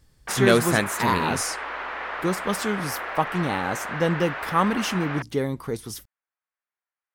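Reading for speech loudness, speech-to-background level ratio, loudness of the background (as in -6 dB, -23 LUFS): -25.0 LUFS, 6.5 dB, -31.5 LUFS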